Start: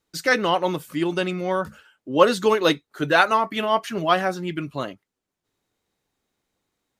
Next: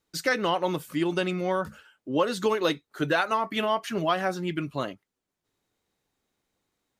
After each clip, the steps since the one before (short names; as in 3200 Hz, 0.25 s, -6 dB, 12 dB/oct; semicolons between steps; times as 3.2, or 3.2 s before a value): compressor 6:1, threshold -19 dBFS, peak gain reduction 10 dB; gain -1.5 dB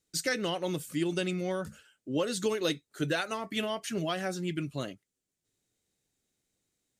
ten-band EQ 125 Hz +3 dB, 1000 Hz -10 dB, 8000 Hz +9 dB; gain -3.5 dB